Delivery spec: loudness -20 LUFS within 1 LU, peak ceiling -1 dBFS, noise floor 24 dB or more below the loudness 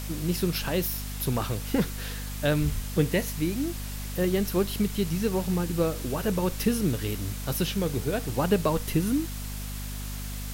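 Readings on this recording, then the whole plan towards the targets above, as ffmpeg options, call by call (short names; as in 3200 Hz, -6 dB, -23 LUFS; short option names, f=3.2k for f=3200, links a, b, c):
hum 50 Hz; harmonics up to 250 Hz; hum level -33 dBFS; noise floor -35 dBFS; noise floor target -53 dBFS; loudness -28.5 LUFS; peak -11.0 dBFS; loudness target -20.0 LUFS
-> -af "bandreject=f=50:t=h:w=4,bandreject=f=100:t=h:w=4,bandreject=f=150:t=h:w=4,bandreject=f=200:t=h:w=4,bandreject=f=250:t=h:w=4"
-af "afftdn=nr=18:nf=-35"
-af "volume=8.5dB"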